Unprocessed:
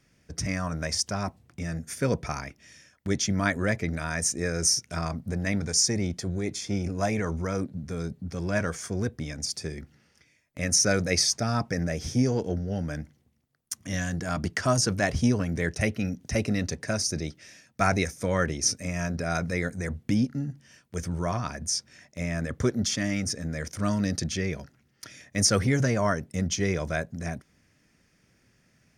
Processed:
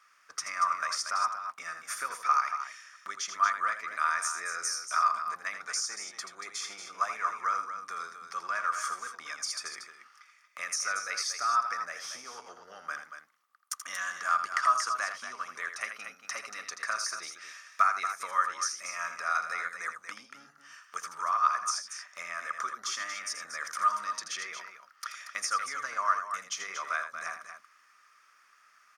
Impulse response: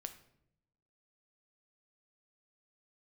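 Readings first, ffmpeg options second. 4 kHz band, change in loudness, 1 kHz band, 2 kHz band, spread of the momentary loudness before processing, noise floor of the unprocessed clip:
−6.5 dB, −4.0 dB, +6.5 dB, −1.0 dB, 12 LU, −66 dBFS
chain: -af "acompressor=threshold=-31dB:ratio=6,highpass=frequency=1200:width_type=q:width=13,aecho=1:1:81.63|233.2:0.355|0.355"

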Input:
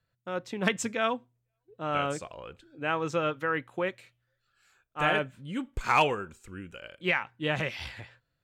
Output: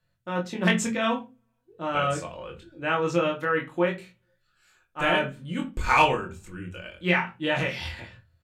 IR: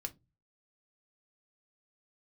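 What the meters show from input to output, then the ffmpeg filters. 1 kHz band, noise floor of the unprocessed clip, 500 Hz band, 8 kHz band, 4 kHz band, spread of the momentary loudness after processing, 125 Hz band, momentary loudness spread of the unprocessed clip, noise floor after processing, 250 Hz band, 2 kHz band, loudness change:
+4.0 dB, −81 dBFS, +4.0 dB, +4.0 dB, +4.0 dB, 16 LU, +5.5 dB, 17 LU, −73 dBFS, +6.0 dB, +4.0 dB, +4.0 dB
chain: -filter_complex "[0:a]asplit=2[link_01][link_02];[link_02]adelay=23,volume=-3dB[link_03];[link_01][link_03]amix=inputs=2:normalize=0[link_04];[1:a]atrim=start_sample=2205,asetrate=29106,aresample=44100[link_05];[link_04][link_05]afir=irnorm=-1:irlink=0,volume=2dB"

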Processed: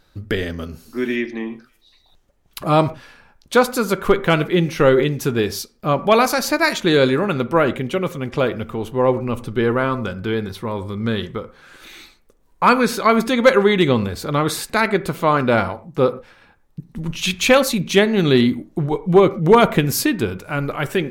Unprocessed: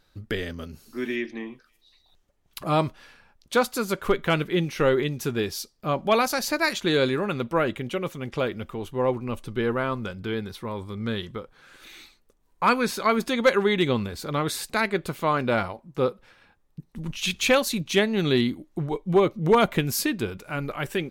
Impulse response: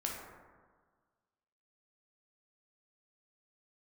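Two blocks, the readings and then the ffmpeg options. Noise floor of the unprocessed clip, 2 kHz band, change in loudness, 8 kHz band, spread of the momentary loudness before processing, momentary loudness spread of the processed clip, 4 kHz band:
−65 dBFS, +6.0 dB, +7.0 dB, +5.5 dB, 11 LU, 11 LU, +5.0 dB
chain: -filter_complex "[0:a]asplit=2[link_01][link_02];[1:a]atrim=start_sample=2205,afade=type=out:start_time=0.18:duration=0.01,atrim=end_sample=8379,lowpass=2200[link_03];[link_02][link_03]afir=irnorm=-1:irlink=0,volume=-10.5dB[link_04];[link_01][link_04]amix=inputs=2:normalize=0,volume=5.5dB"

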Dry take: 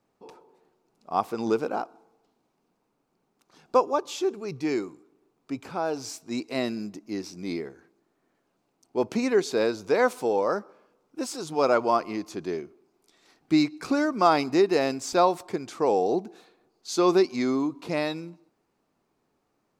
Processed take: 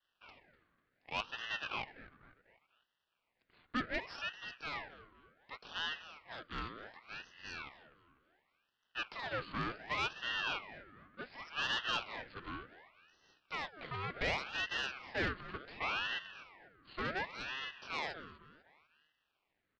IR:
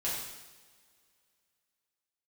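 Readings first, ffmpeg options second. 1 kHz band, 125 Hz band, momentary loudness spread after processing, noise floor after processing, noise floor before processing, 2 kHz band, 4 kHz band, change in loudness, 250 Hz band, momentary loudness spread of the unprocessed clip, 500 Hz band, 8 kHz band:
−14.5 dB, −10.0 dB, 17 LU, −84 dBFS, −74 dBFS, −2.0 dB, −2.5 dB, −13.5 dB, −22.0 dB, 13 LU, −23.0 dB, −19.0 dB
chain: -filter_complex "[0:a]adynamicequalizer=threshold=0.00398:dfrequency=2500:dqfactor=2.4:tfrequency=2500:tqfactor=2.4:attack=5:release=100:ratio=0.375:range=2:mode=cutabove:tftype=bell,aresample=8000,aeval=exprs='max(val(0),0)':channel_layout=same,aresample=44100,aeval=exprs='(tanh(7.08*val(0)+0.6)-tanh(0.6))/7.08':channel_layout=same,acrossover=split=390|850[link_01][link_02][link_03];[link_01]acrusher=bits=3:mix=0:aa=0.000001[link_04];[link_04][link_02][link_03]amix=inputs=3:normalize=0,asplit=2[link_05][link_06];[link_06]adelay=248,lowpass=frequency=2900:poles=1,volume=-15dB,asplit=2[link_07][link_08];[link_08]adelay=248,lowpass=frequency=2900:poles=1,volume=0.47,asplit=2[link_09][link_10];[link_10]adelay=248,lowpass=frequency=2900:poles=1,volume=0.47,asplit=2[link_11][link_12];[link_12]adelay=248,lowpass=frequency=2900:poles=1,volume=0.47[link_13];[link_05][link_07][link_09][link_11][link_13]amix=inputs=5:normalize=0,aeval=exprs='val(0)*sin(2*PI*1500*n/s+1500*0.55/0.68*sin(2*PI*0.68*n/s))':channel_layout=same,volume=3.5dB"

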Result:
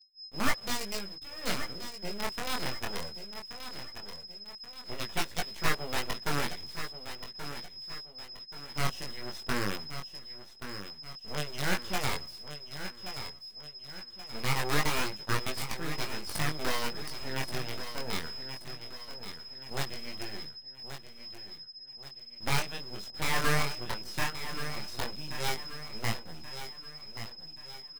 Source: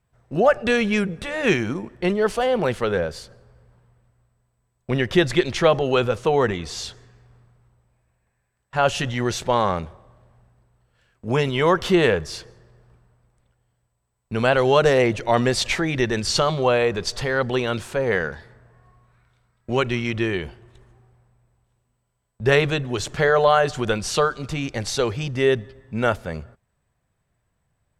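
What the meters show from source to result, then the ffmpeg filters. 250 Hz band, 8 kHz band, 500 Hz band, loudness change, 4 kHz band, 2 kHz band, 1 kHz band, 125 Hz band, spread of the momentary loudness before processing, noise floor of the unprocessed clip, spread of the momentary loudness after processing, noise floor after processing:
−15.5 dB, −6.0 dB, −20.5 dB, −14.5 dB, −6.0 dB, −10.0 dB, −12.0 dB, −12.0 dB, 12 LU, −73 dBFS, 12 LU, −50 dBFS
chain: -filter_complex "[0:a]lowshelf=frequency=80:gain=-8,aeval=exprs='0.668*(cos(1*acos(clip(val(0)/0.668,-1,1)))-cos(1*PI/2))+0.0596*(cos(7*acos(clip(val(0)/0.668,-1,1)))-cos(7*PI/2))':channel_layout=same,lowshelf=frequency=220:gain=9.5,acrossover=split=490|3000[link_01][link_02][link_03];[link_01]acompressor=threshold=-26dB:ratio=8[link_04];[link_04][link_02][link_03]amix=inputs=3:normalize=0,acrossover=split=120[link_05][link_06];[link_06]acrusher=bits=4:dc=4:mix=0:aa=0.000001[link_07];[link_05][link_07]amix=inputs=2:normalize=0,aeval=exprs='abs(val(0))':channel_layout=same,aeval=exprs='val(0)+0.02*sin(2*PI*5100*n/s)':channel_layout=same,flanger=delay=18.5:depth=6.4:speed=0.19,agate=range=-33dB:threshold=-37dB:ratio=3:detection=peak,aecho=1:1:1129|2258|3387|4516:0.299|0.125|0.0527|0.0221,volume=-6dB"

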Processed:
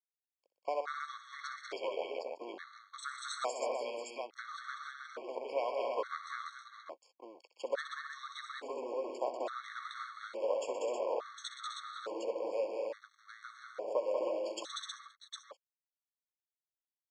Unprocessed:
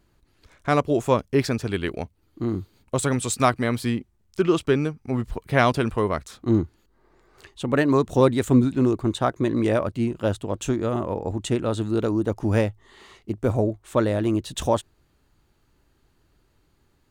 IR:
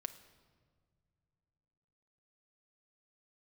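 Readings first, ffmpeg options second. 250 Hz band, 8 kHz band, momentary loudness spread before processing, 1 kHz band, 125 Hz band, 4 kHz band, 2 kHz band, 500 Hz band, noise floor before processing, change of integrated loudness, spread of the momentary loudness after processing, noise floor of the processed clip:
−29.5 dB, −15.0 dB, 9 LU, −12.5 dB, below −40 dB, −9.5 dB, −13.0 dB, −12.5 dB, −65 dBFS, −16.0 dB, 14 LU, below −85 dBFS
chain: -filter_complex "[0:a]acompressor=threshold=-27dB:ratio=6,aeval=exprs='sgn(val(0))*max(abs(val(0))-0.00708,0)':channel_layout=same,highpass=frequency=490:width=0.5412,highpass=frequency=490:width=1.3066,equalizer=frequency=530:width_type=q:width=4:gain=8,equalizer=frequency=1300:width_type=q:width=4:gain=4,equalizer=frequency=2800:width_type=q:width=4:gain=-5,equalizer=frequency=4200:width_type=q:width=4:gain=5,lowpass=frequency=6700:width=0.5412,lowpass=frequency=6700:width=1.3066,asplit=2[link_01][link_02];[link_02]aecho=0:1:63|122|191|256|318|759:0.237|0.299|0.631|0.398|0.531|0.473[link_03];[link_01][link_03]amix=inputs=2:normalize=0,afftfilt=real='re*gt(sin(2*PI*0.58*pts/sr)*(1-2*mod(floor(b*sr/1024/1100),2)),0)':imag='im*gt(sin(2*PI*0.58*pts/sr)*(1-2*mod(floor(b*sr/1024/1100),2)),0)':win_size=1024:overlap=0.75,volume=-3dB"

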